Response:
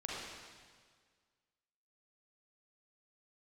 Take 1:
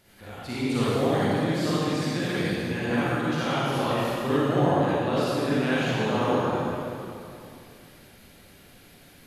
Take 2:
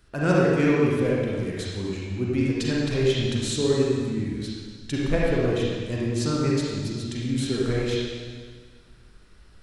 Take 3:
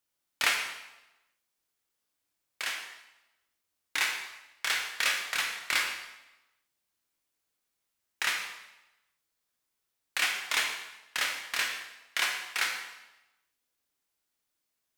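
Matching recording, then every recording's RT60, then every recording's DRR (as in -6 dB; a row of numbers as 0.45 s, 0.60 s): 2; 2.7 s, 1.7 s, 0.95 s; -10.5 dB, -5.5 dB, 1.5 dB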